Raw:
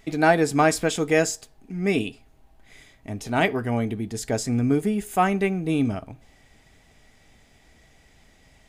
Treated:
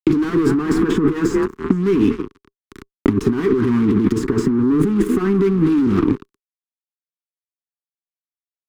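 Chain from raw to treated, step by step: added harmonics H 4 -13 dB, 5 -31 dB, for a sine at -4.5 dBFS; on a send: frequency-shifting echo 0.233 s, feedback 41%, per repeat +38 Hz, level -20.5 dB; on the sum: fuzz box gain 33 dB, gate -39 dBFS; high shelf 2600 Hz -9 dB; negative-ratio compressor -19 dBFS, ratio -0.5; EQ curve 130 Hz 0 dB, 280 Hz +9 dB, 400 Hz +10 dB, 610 Hz -27 dB, 1100 Hz +3 dB, 2400 Hz -8 dB, 10000 Hz -13 dB; three-band squash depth 100%; gain -1 dB

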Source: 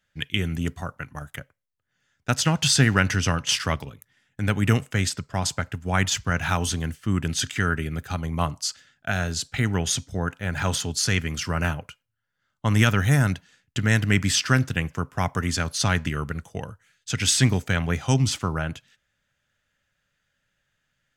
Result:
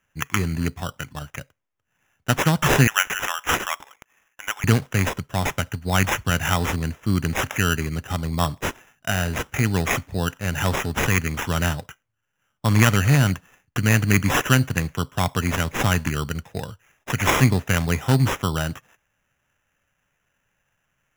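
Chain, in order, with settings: 2.87–4.64 HPF 830 Hz 24 dB/oct; sample-and-hold 10×; gain +2.5 dB

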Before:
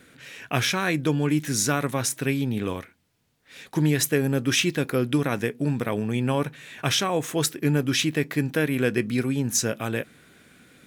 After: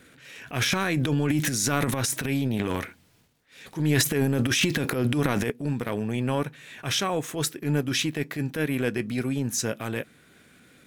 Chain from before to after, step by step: transient shaper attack -9 dB, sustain +11 dB, from 5.5 s sustain -2 dB; gain -1 dB

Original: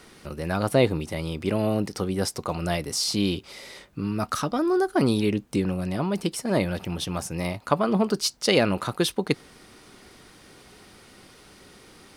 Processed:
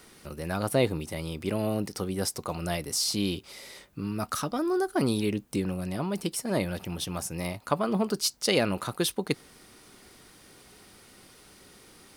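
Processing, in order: high shelf 9000 Hz +11 dB; gain -4.5 dB

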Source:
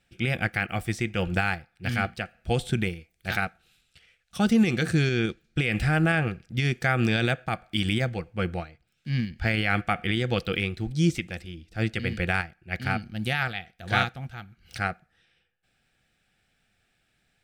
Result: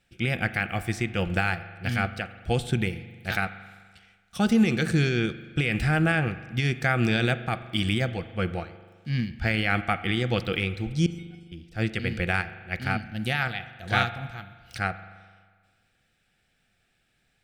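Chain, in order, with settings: 11.06–11.52 resonator 730 Hz, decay 0.32 s, mix 100%; reverb RT60 1.6 s, pre-delay 41 ms, DRR 13 dB

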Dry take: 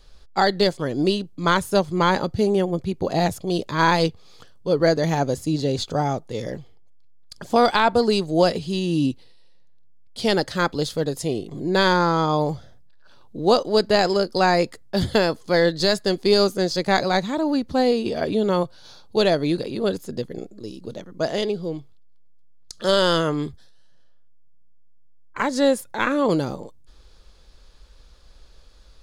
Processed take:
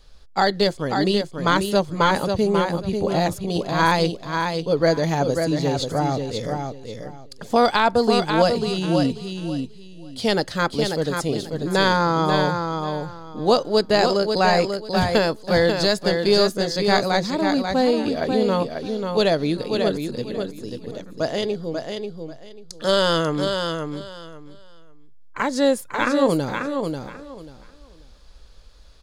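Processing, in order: notch 360 Hz, Q 12; on a send: feedback echo 0.54 s, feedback 21%, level -5.5 dB

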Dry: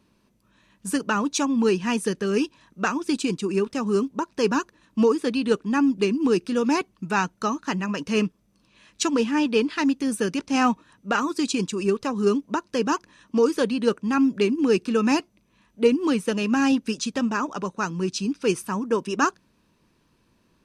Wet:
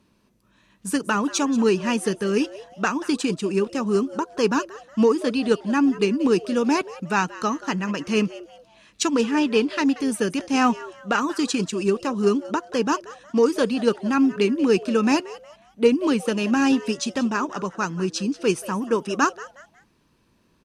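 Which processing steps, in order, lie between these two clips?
frequency-shifting echo 0.182 s, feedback 33%, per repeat +150 Hz, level -17.5 dB; added harmonics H 7 -39 dB, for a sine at -6.5 dBFS; gain +1.5 dB

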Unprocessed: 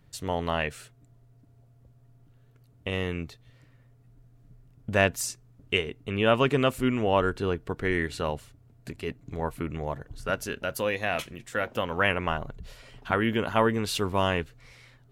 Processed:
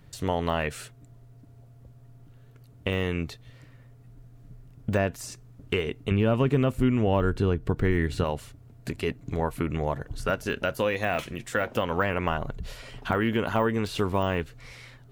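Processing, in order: de-esser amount 100%; 6.11–8.24 low shelf 270 Hz +11 dB; compressor 2.5:1, threshold -30 dBFS, peak gain reduction 11 dB; gain +6.5 dB

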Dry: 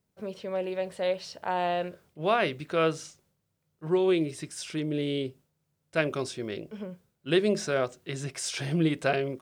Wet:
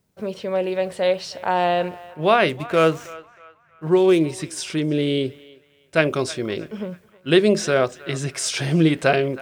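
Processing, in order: 2.49–4.24 median filter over 9 samples; narrowing echo 0.317 s, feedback 44%, band-pass 1400 Hz, level -17 dB; gain +8.5 dB

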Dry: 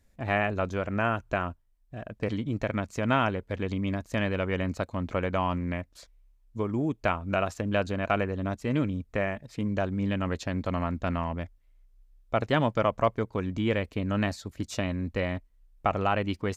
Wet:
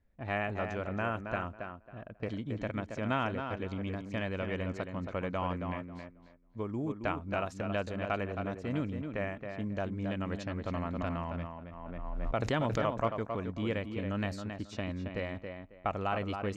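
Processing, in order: low-pass opened by the level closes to 2200 Hz, open at -23 dBFS; tape echo 0.272 s, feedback 24%, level -5 dB, low-pass 2500 Hz; 10.65–13.03 backwards sustainer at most 28 dB/s; gain -7 dB

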